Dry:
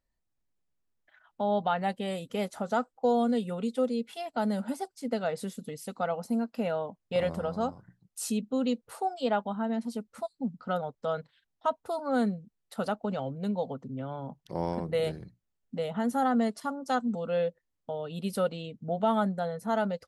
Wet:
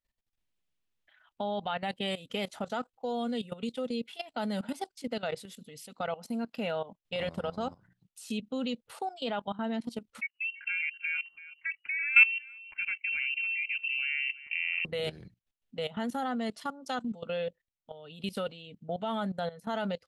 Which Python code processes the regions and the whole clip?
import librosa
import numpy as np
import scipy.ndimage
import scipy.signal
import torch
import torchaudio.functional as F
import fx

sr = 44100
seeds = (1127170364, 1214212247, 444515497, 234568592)

y = fx.chain(x, sr, fx.hum_notches(base_hz=50, count=3),
    fx.echo_single(ms=332, db=-17.0),
    fx.freq_invert(carrier_hz=2900), at=(10.21, 14.85))
y = fx.peak_eq(y, sr, hz=3000.0, db=10.5, octaves=1.3)
y = fx.level_steps(y, sr, step_db=16)